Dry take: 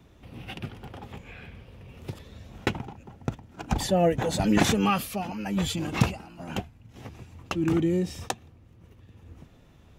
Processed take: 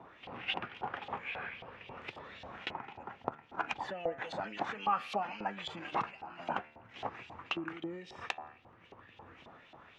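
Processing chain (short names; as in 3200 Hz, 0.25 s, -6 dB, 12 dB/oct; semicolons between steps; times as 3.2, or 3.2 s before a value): LPF 8300 Hz; high shelf 2900 Hz -11.5 dB; de-hum 75.65 Hz, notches 36; compressor 8:1, threshold -38 dBFS, peak gain reduction 21.5 dB; LFO band-pass saw up 3.7 Hz 750–3700 Hz; gain +17 dB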